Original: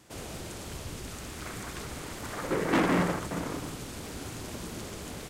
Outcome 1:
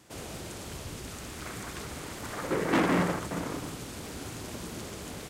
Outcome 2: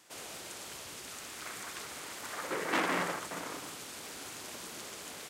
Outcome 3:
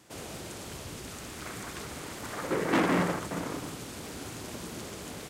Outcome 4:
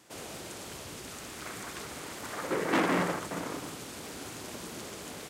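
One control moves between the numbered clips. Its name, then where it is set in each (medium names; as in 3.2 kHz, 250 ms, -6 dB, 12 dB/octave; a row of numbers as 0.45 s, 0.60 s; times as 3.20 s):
high-pass, cutoff frequency: 43 Hz, 960 Hz, 110 Hz, 280 Hz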